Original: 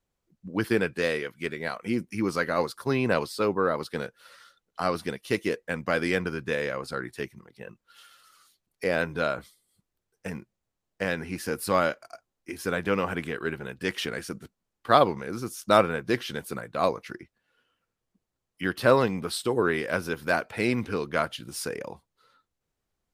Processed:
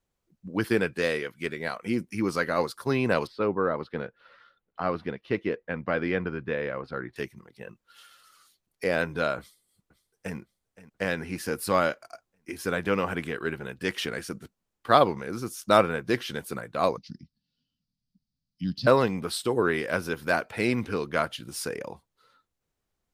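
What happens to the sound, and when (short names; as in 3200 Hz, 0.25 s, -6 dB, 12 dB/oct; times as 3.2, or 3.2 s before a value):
3.27–7.16 air absorption 340 m
9.38–10.37 echo throw 0.52 s, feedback 45%, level -17 dB
16.97–18.87 EQ curve 110 Hz 0 dB, 160 Hz +7 dB, 260 Hz +1 dB, 370 Hz -23 dB, 870 Hz -22 dB, 1400 Hz -29 dB, 2100 Hz -21 dB, 4800 Hz +6 dB, 8500 Hz -21 dB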